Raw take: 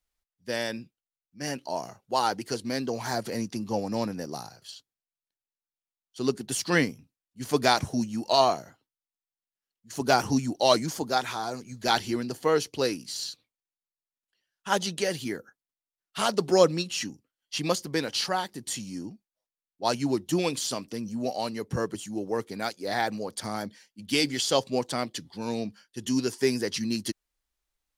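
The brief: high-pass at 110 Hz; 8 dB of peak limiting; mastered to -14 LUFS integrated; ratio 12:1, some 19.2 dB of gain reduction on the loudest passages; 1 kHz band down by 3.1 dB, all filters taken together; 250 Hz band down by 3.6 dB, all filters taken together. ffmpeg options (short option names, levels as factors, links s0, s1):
-af "highpass=110,equalizer=f=250:t=o:g=-4,equalizer=f=1000:t=o:g=-4,acompressor=threshold=0.0158:ratio=12,volume=25.1,alimiter=limit=0.944:level=0:latency=1"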